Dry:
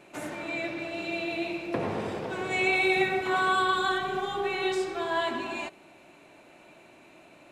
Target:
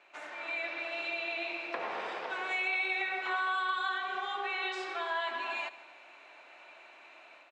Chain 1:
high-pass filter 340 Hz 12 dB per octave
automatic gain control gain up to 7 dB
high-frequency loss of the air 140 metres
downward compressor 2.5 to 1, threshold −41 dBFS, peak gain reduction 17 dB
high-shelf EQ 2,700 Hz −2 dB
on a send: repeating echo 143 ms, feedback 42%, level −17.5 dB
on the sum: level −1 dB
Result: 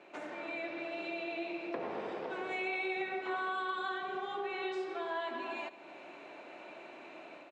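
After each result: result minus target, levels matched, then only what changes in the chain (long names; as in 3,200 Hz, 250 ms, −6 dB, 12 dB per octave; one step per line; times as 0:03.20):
250 Hz band +12.0 dB; downward compressor: peak gain reduction +7 dB
change: high-pass filter 1,000 Hz 12 dB per octave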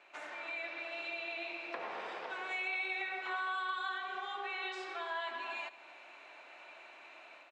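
downward compressor: peak gain reduction +5 dB
change: downward compressor 2.5 to 1, threshold −32.5 dBFS, peak gain reduction 10 dB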